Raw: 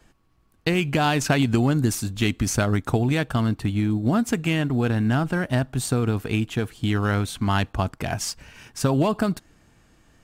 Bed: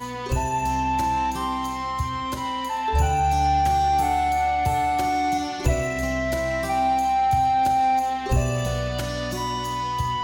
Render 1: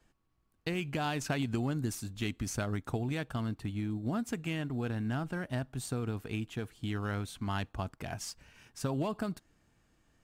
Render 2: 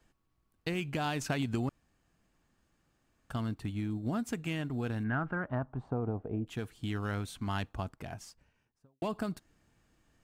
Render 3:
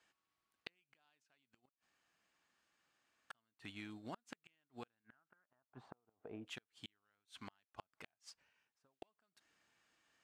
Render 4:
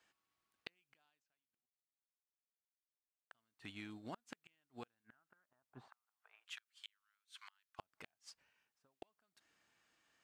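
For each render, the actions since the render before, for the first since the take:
trim -12.5 dB
1.69–3.30 s: room tone; 5.03–6.46 s: resonant low-pass 1.8 kHz -> 560 Hz, resonance Q 2.6; 7.62–9.02 s: studio fade out
band-pass filter 2.8 kHz, Q 0.52; inverted gate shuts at -35 dBFS, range -39 dB
1.01–3.31 s: fade out exponential; 5.88–7.79 s: inverse Chebyshev high-pass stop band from 250 Hz, stop band 70 dB

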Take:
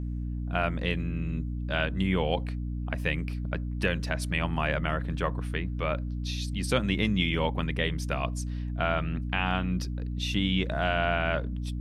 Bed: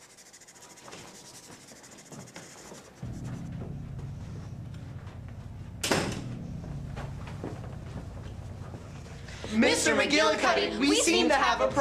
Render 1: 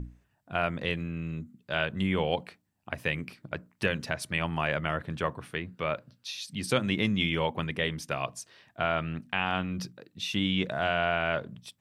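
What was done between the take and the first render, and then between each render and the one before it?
hum notches 60/120/180/240/300 Hz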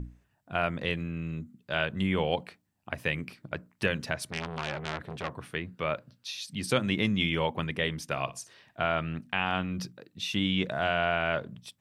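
4.20–5.38 s: transformer saturation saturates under 2.5 kHz; 8.07–8.85 s: flutter echo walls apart 10.2 m, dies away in 0.22 s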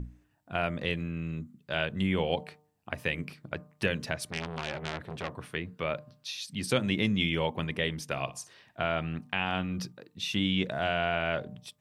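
de-hum 150.6 Hz, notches 8; dynamic bell 1.2 kHz, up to -4 dB, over -40 dBFS, Q 1.3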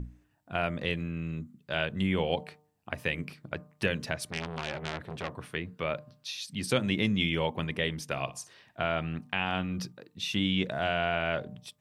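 no audible change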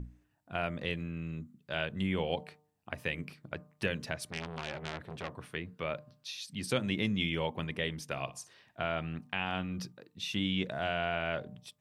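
trim -4 dB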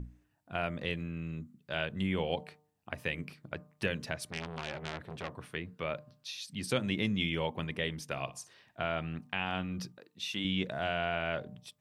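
9.98–10.45 s: high-pass 340 Hz 6 dB/octave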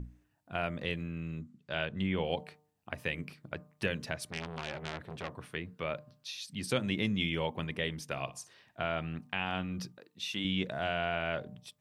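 1.40–2.23 s: low-pass 9.1 kHz -> 4.6 kHz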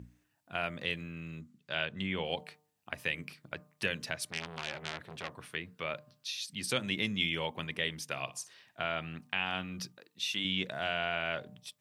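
high-pass 83 Hz; tilt shelf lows -4.5 dB, about 1.2 kHz

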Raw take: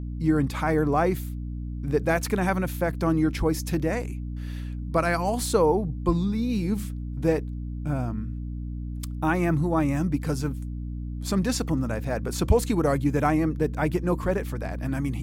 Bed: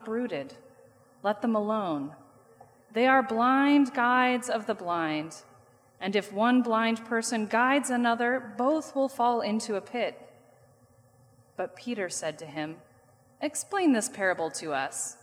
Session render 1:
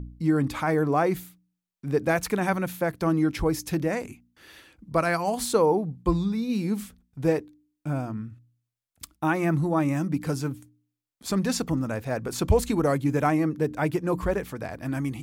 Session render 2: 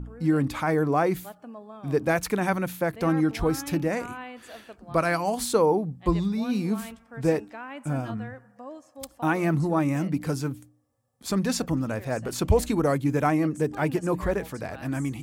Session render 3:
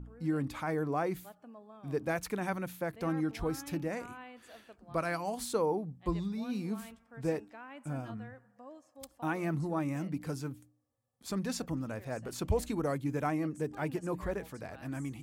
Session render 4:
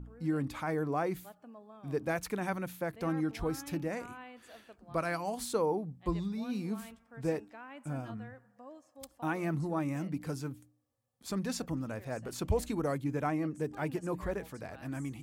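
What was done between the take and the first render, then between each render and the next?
de-hum 60 Hz, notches 5
add bed -15.5 dB
trim -9.5 dB
13.04–13.61 s: treble shelf 5.4 kHz -5 dB

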